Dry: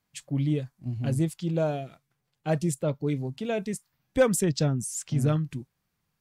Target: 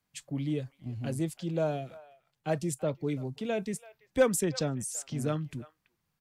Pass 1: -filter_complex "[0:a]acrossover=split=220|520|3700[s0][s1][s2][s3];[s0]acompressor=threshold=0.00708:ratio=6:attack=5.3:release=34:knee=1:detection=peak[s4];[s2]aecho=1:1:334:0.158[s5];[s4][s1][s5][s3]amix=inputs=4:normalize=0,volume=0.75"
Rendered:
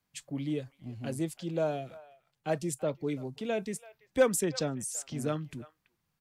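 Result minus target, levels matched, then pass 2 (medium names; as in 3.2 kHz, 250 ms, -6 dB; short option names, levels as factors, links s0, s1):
compression: peak gain reduction +6.5 dB
-filter_complex "[0:a]acrossover=split=220|520|3700[s0][s1][s2][s3];[s0]acompressor=threshold=0.0178:ratio=6:attack=5.3:release=34:knee=1:detection=peak[s4];[s2]aecho=1:1:334:0.158[s5];[s4][s1][s5][s3]amix=inputs=4:normalize=0,volume=0.75"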